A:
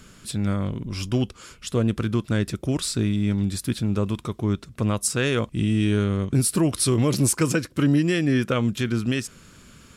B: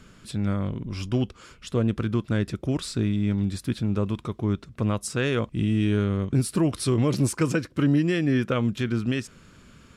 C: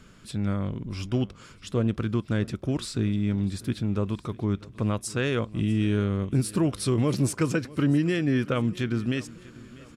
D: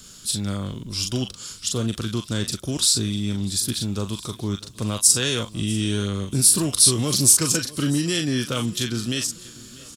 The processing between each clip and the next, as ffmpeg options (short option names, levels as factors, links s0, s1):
-af "lowpass=f=3400:p=1,volume=0.841"
-af "aecho=1:1:645|1290|1935|2580:0.0891|0.0437|0.0214|0.0105,volume=0.841"
-filter_complex "[0:a]acrossover=split=390|780[s0][s1][s2];[s1]volume=39.8,asoftclip=hard,volume=0.0251[s3];[s2]asplit=2[s4][s5];[s5]adelay=40,volume=0.708[s6];[s4][s6]amix=inputs=2:normalize=0[s7];[s0][s3][s7]amix=inputs=3:normalize=0,aexciter=amount=6.1:drive=6.6:freq=3300"